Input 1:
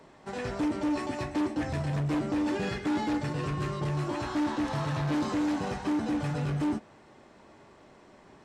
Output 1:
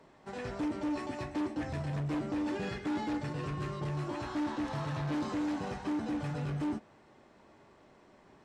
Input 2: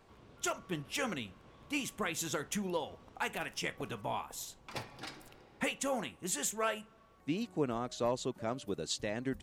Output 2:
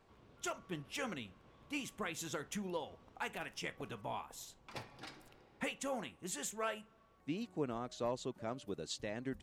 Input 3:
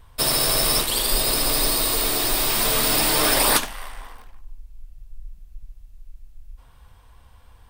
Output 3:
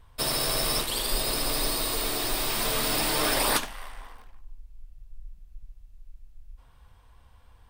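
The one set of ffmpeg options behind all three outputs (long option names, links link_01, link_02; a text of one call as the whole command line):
ffmpeg -i in.wav -af "highshelf=frequency=7100:gain=-4.5,volume=-5dB" out.wav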